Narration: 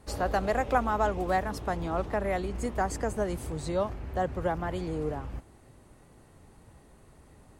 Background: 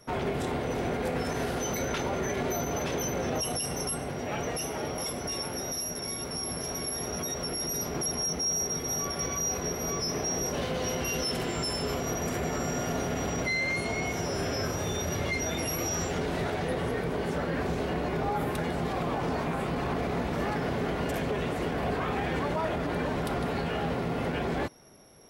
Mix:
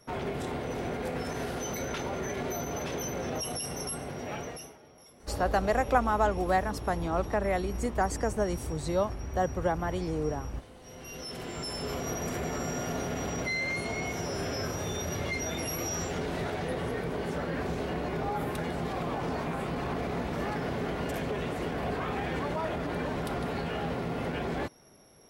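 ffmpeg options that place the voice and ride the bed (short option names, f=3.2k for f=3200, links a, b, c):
-filter_complex "[0:a]adelay=5200,volume=1dB[a];[1:a]volume=16dB,afade=t=out:st=4.31:d=0.47:silence=0.11885,afade=t=in:st=10.82:d=1.23:silence=0.105925[b];[a][b]amix=inputs=2:normalize=0"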